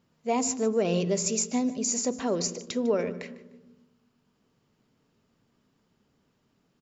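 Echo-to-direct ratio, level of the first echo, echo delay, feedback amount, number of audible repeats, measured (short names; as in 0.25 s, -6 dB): -18.0 dB, -18.5 dB, 0.151 s, 29%, 2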